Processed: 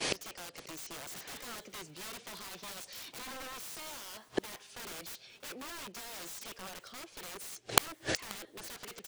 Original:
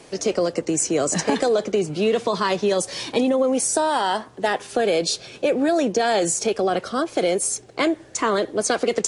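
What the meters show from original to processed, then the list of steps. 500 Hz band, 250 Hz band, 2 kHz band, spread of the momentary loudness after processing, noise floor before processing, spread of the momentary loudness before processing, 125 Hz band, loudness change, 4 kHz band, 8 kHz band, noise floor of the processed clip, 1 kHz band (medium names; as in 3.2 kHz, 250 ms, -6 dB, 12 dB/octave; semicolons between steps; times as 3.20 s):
-26.0 dB, -24.5 dB, -13.5 dB, 9 LU, -46 dBFS, 5 LU, -17.5 dB, -18.0 dB, -11.0 dB, -16.0 dB, -60 dBFS, -19.0 dB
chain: expander -40 dBFS; peaking EQ 3.5 kHz +12 dB 2.9 oct; in parallel at +1.5 dB: peak limiter -9 dBFS, peak gain reduction 10.5 dB; on the sum: integer overflow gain 8 dB; inverted gate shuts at -21 dBFS, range -40 dB; on a send: feedback delay 533 ms, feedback 41%, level -22 dB; on the sum: trim +8.5 dB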